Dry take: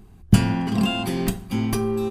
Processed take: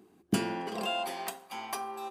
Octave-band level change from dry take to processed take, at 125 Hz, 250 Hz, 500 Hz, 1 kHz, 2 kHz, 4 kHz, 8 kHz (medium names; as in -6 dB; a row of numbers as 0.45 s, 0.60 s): -21.5 dB, -15.0 dB, -10.0 dB, -3.0 dB, -7.0 dB, -7.5 dB, -7.5 dB